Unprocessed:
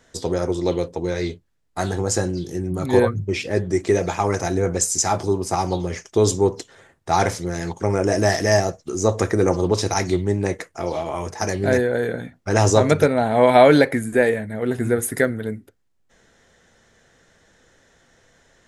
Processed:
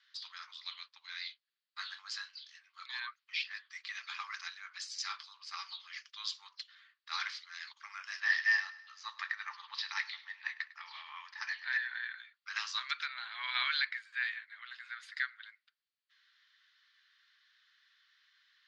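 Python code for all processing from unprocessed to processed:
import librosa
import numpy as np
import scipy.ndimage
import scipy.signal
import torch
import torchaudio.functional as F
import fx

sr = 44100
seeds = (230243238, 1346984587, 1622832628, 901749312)

y = fx.chain(x, sr, fx.lowpass(hz=4600.0, slope=12),
    fx.small_body(hz=(890.0, 1800.0), ring_ms=20, db=10),
    fx.echo_feedback(ms=102, feedback_pct=50, wet_db=-18.5), at=(8.2, 12.15))
y = scipy.signal.sosfilt(scipy.signal.cheby1(4, 1.0, [1100.0, 4600.0], 'bandpass', fs=sr, output='sos'), y)
y = np.diff(y, prepend=0.0)
y = F.gain(torch.from_numpy(y), 2.5).numpy()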